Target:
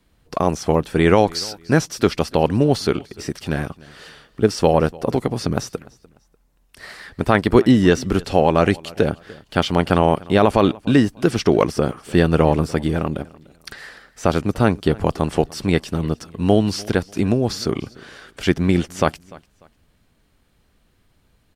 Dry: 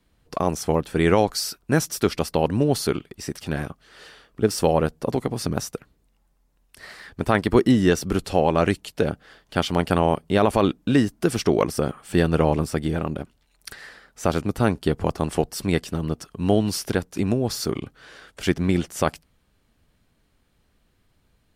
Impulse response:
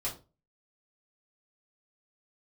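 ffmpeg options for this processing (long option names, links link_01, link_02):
-filter_complex "[0:a]acrossover=split=6300[link_01][link_02];[link_02]acompressor=threshold=-47dB:ratio=4:attack=1:release=60[link_03];[link_01][link_03]amix=inputs=2:normalize=0,aecho=1:1:296|592:0.075|0.0217,volume=4dB"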